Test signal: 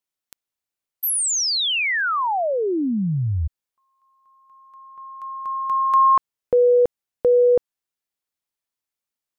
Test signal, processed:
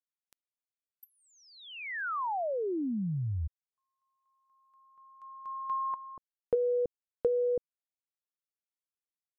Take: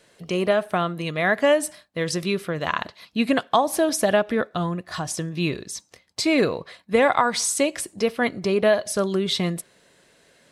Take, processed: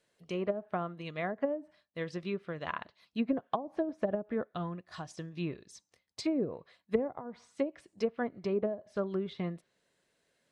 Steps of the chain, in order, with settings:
treble cut that deepens with the level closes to 420 Hz, closed at −15 dBFS
expander for the loud parts 1.5 to 1, over −38 dBFS
level −7.5 dB

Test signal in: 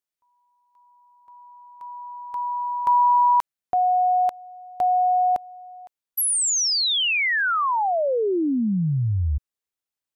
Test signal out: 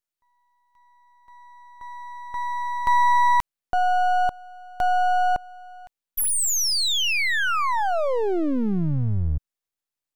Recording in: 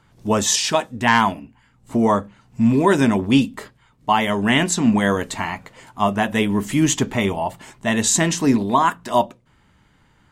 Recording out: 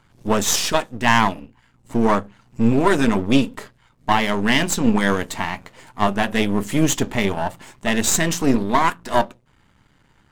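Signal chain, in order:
gain on one half-wave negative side −12 dB
level +2.5 dB

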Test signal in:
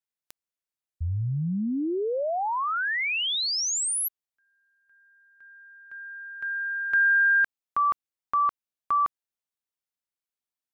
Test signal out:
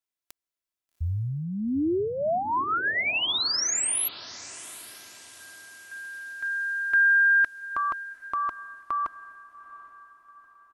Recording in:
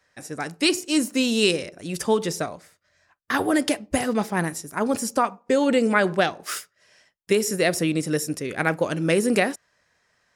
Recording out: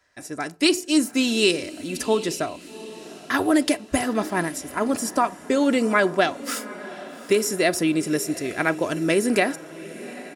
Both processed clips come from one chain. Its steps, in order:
comb filter 3 ms, depth 41%
on a send: feedback delay with all-pass diffusion 794 ms, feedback 45%, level −16 dB

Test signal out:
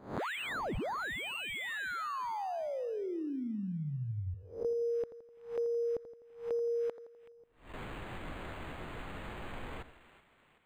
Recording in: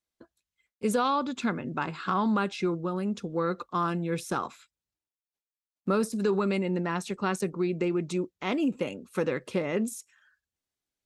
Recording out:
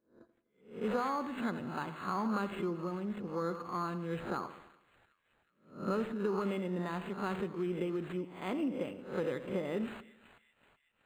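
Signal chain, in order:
peak hold with a rise ahead of every peak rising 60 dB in 0.42 s
echo with a time of its own for lows and highs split 2,100 Hz, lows 84 ms, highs 377 ms, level −13 dB
linearly interpolated sample-rate reduction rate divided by 8×
level −8 dB

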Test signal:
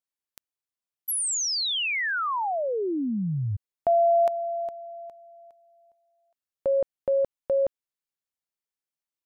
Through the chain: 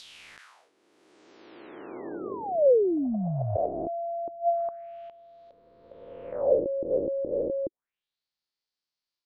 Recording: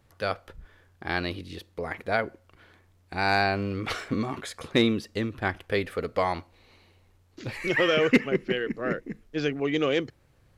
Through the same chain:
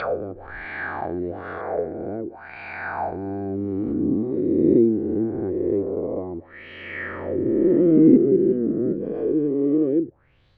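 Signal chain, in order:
peak hold with a rise ahead of every peak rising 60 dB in 2.38 s
envelope-controlled low-pass 340–4,600 Hz down, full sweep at −22 dBFS
level −3 dB

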